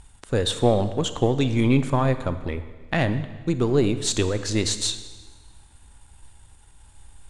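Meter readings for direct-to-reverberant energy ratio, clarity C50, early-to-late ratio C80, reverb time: 11.0 dB, 11.5 dB, 13.5 dB, 1.4 s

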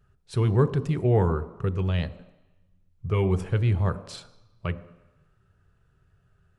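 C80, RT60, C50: 16.5 dB, 1.0 s, 15.0 dB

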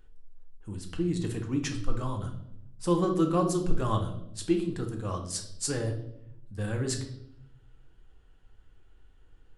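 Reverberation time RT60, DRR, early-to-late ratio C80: 0.75 s, 2.5 dB, 12.5 dB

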